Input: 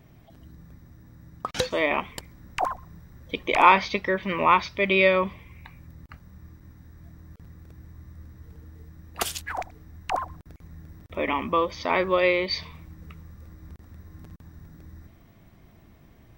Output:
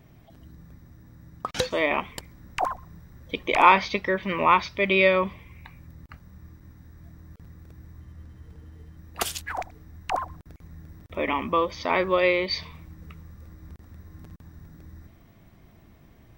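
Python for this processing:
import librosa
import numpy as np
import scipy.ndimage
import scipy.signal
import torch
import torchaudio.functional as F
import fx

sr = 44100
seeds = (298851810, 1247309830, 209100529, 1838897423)

y = fx.median_filter(x, sr, points=3, at=(8.0, 8.97))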